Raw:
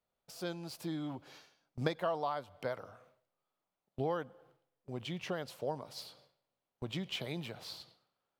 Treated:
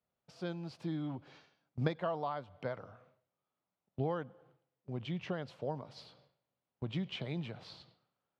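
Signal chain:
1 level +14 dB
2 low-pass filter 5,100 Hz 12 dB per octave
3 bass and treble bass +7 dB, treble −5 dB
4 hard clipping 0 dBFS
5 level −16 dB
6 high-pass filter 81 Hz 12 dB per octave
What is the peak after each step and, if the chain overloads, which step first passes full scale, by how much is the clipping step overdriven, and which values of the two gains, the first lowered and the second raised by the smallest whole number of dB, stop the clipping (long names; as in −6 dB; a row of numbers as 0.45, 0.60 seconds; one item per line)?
−2.0, −2.0, −1.5, −1.5, −17.5, −16.5 dBFS
no step passes full scale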